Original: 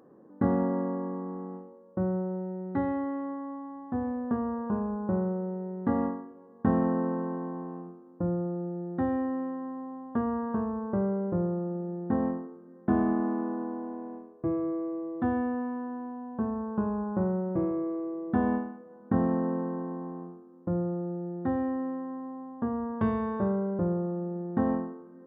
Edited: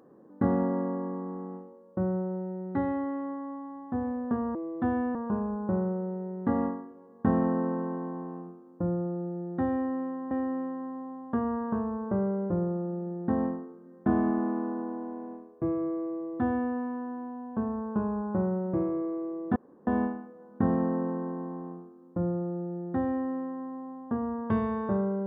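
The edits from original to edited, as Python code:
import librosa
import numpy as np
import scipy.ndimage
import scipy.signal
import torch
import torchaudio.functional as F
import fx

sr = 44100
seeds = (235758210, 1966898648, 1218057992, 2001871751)

y = fx.edit(x, sr, fx.repeat(start_s=9.13, length_s=0.58, count=2),
    fx.duplicate(start_s=14.95, length_s=0.6, to_s=4.55),
    fx.insert_room_tone(at_s=18.38, length_s=0.31), tone=tone)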